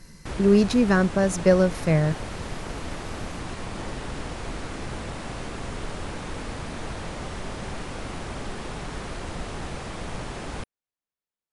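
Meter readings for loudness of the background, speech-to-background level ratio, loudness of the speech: -35.0 LUFS, 14.0 dB, -21.0 LUFS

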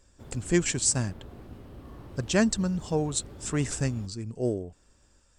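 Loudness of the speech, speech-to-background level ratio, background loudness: -28.5 LUFS, 18.0 dB, -46.5 LUFS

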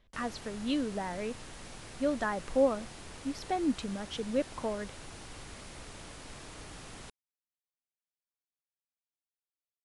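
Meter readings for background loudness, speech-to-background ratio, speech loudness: -47.0 LUFS, 13.0 dB, -34.0 LUFS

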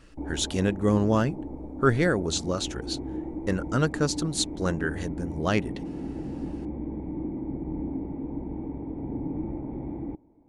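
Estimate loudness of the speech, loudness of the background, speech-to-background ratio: -27.5 LUFS, -35.5 LUFS, 8.0 dB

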